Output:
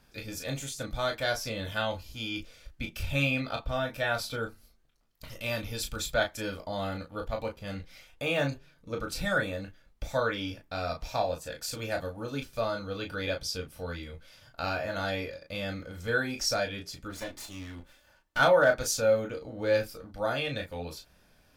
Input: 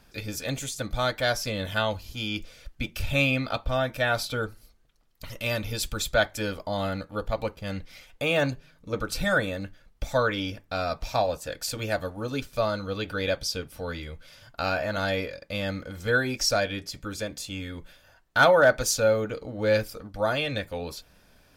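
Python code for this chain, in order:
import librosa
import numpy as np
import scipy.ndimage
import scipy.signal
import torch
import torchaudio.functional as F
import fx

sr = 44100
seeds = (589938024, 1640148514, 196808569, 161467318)

y = fx.lower_of_two(x, sr, delay_ms=3.4, at=(17.09, 18.38), fade=0.02)
y = fx.room_early_taps(y, sr, ms=(22, 35), db=(-8.5, -7.0))
y = y * 10.0 ** (-5.5 / 20.0)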